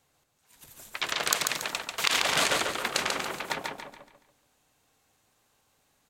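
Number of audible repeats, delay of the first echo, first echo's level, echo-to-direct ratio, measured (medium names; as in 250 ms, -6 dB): 4, 141 ms, -4.0 dB, -3.5 dB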